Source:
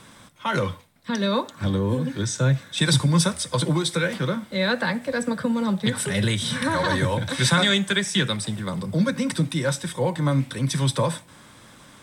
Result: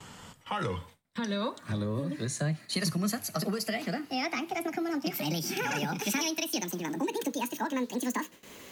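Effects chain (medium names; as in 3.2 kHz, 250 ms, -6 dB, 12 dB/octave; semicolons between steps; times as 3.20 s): gliding tape speed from 85% -> 191%; compression 2:1, threshold -36 dBFS, peak gain reduction 11.5 dB; gate with hold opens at -40 dBFS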